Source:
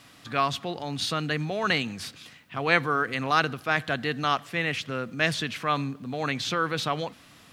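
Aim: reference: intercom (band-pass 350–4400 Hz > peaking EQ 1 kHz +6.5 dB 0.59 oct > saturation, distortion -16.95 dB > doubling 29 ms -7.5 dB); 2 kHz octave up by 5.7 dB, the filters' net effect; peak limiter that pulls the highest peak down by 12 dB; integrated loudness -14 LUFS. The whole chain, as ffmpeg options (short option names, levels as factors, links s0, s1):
-filter_complex "[0:a]equalizer=f=2000:t=o:g=6.5,alimiter=limit=0.188:level=0:latency=1,highpass=350,lowpass=4400,equalizer=f=1000:t=o:w=0.59:g=6.5,asoftclip=threshold=0.141,asplit=2[s0][s1];[s1]adelay=29,volume=0.422[s2];[s0][s2]amix=inputs=2:normalize=0,volume=5.01"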